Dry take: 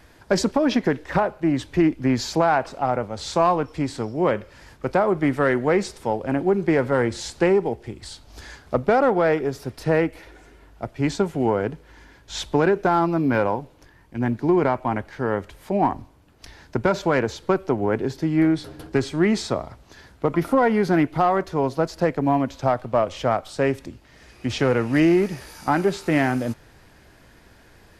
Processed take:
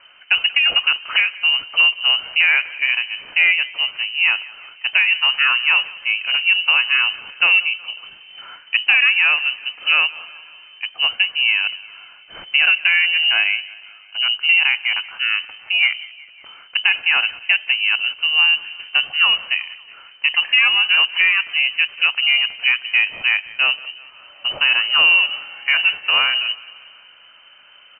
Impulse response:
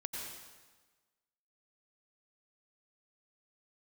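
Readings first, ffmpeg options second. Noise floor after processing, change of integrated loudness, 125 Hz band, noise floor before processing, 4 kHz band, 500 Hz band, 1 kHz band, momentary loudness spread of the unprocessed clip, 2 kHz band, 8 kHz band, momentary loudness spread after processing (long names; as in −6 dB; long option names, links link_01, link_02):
−46 dBFS, +7.0 dB, below −30 dB, −52 dBFS, +22.0 dB, below −20 dB, −7.0 dB, 10 LU, +16.0 dB, below −40 dB, 10 LU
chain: -af "lowpass=frequency=2600:width_type=q:width=0.5098,lowpass=frequency=2600:width_type=q:width=0.6013,lowpass=frequency=2600:width_type=q:width=0.9,lowpass=frequency=2600:width_type=q:width=2.563,afreqshift=-3100,aecho=1:1:184|368|552|736:0.0891|0.0508|0.029|0.0165,volume=3.5dB"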